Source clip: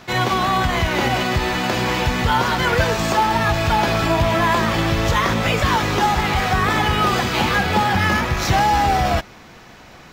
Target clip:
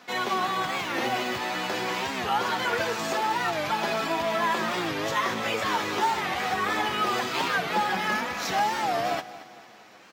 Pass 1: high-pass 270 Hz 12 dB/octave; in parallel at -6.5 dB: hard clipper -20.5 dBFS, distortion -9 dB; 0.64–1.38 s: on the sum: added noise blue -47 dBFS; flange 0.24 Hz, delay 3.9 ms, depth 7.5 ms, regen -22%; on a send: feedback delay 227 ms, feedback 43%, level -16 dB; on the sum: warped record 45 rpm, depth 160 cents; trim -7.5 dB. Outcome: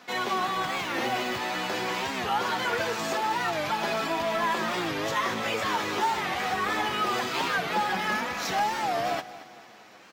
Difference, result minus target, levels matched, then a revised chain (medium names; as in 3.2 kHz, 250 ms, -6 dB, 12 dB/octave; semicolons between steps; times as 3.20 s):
hard clipper: distortion +18 dB
high-pass 270 Hz 12 dB/octave; in parallel at -6.5 dB: hard clipper -11 dBFS, distortion -27 dB; 0.64–1.38 s: on the sum: added noise blue -47 dBFS; flange 0.24 Hz, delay 3.9 ms, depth 7.5 ms, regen -22%; on a send: feedback delay 227 ms, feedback 43%, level -16 dB; on the sum: warped record 45 rpm, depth 160 cents; trim -7.5 dB